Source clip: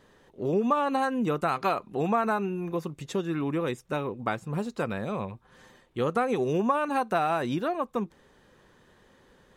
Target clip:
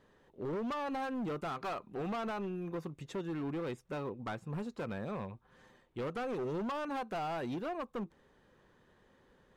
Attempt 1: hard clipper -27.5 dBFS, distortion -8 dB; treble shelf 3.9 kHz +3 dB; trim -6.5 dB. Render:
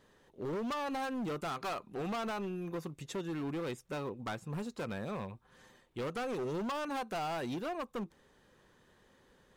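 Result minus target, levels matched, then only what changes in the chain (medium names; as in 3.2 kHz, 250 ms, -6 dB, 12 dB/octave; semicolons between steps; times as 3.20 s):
8 kHz band +7.5 dB
change: treble shelf 3.9 kHz -7.5 dB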